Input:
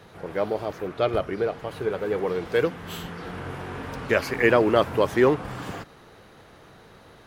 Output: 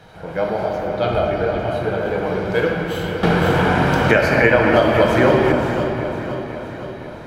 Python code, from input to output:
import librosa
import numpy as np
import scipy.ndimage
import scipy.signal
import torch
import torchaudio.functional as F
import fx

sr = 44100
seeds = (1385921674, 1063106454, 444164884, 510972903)

y = fx.high_shelf(x, sr, hz=8500.0, db=-6.5)
y = y + 0.4 * np.pad(y, (int(1.3 * sr / 1000.0), 0))[:len(y)]
y = fx.echo_feedback(y, sr, ms=514, feedback_pct=60, wet_db=-11.5)
y = fx.room_shoebox(y, sr, seeds[0], volume_m3=150.0, walls='hard', distance_m=0.55)
y = fx.band_squash(y, sr, depth_pct=100, at=(3.23, 5.52))
y = y * 10.0 ** (2.5 / 20.0)